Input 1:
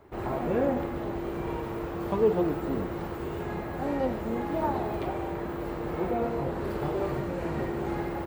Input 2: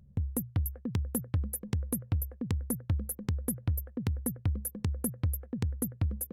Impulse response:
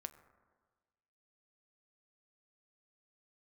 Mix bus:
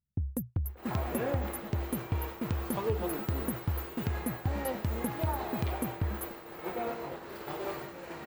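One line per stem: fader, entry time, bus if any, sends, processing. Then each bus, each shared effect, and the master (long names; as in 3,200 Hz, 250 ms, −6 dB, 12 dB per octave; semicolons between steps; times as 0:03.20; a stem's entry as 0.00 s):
−1.0 dB, 0.65 s, no send, spectral tilt +3.5 dB per octave
+1.5 dB, 0.00 s, no send, no processing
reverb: not used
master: downward expander −30 dBFS; parametric band 10,000 Hz −7 dB 0.95 octaves; downward compressor 2.5 to 1, threshold −29 dBFS, peak gain reduction 7 dB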